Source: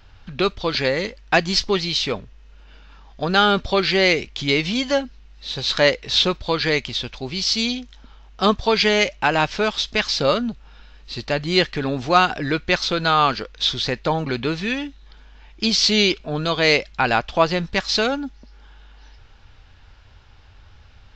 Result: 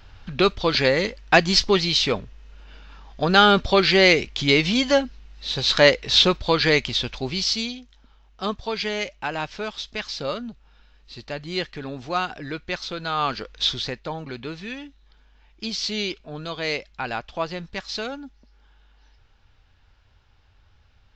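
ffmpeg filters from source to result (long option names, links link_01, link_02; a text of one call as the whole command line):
ffmpeg -i in.wav -af "volume=9.5dB,afade=type=out:start_time=7.25:duration=0.48:silence=0.281838,afade=type=in:start_time=13.09:duration=0.54:silence=0.398107,afade=type=out:start_time=13.63:duration=0.38:silence=0.375837" out.wav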